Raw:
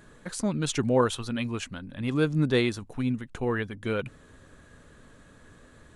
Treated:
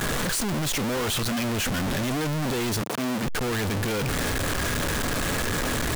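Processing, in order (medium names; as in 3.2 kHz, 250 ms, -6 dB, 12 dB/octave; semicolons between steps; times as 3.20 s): one-bit comparator; peak limiter -34 dBFS, peak gain reduction 21.5 dB; 2.82–3.23 s: high-pass 140 Hz 24 dB/octave; trim +8 dB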